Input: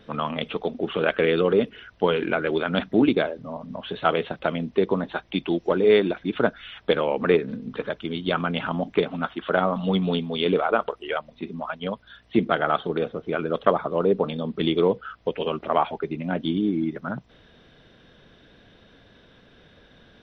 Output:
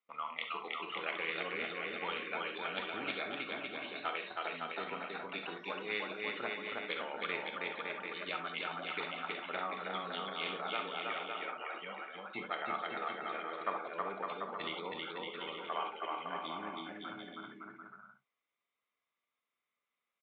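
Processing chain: spectral noise reduction 16 dB; gate with hold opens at -49 dBFS; two resonant band-passes 1.6 kHz, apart 0.85 oct; bouncing-ball echo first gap 320 ms, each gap 0.75×, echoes 5; gated-style reverb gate 90 ms flat, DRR 6.5 dB; spectrum-flattening compressor 2:1; trim -7.5 dB

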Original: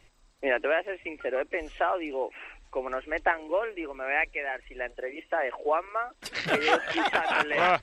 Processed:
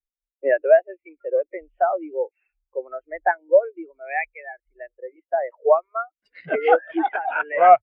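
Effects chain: spectral contrast expander 2.5:1; trim +7.5 dB

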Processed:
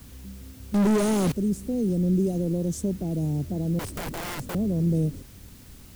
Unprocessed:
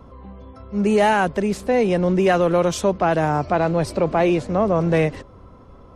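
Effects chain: Chebyshev band-stop 260–8400 Hz, order 2; treble shelf 4.5 kHz +3.5 dB; word length cut 8-bit, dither triangular; 0.74–1.32 s: overdrive pedal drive 35 dB, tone 3.5 kHz, clips at -13 dBFS; 3.79–4.55 s: integer overflow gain 24.5 dB; bass shelf 400 Hz +4.5 dB; trim -5 dB

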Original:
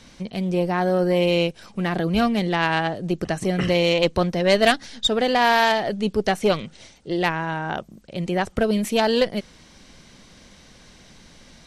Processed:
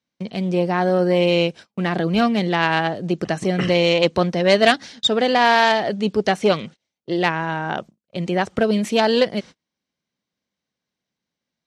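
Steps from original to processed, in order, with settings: gate -37 dBFS, range -36 dB; band-pass 120–7400 Hz; trim +2.5 dB

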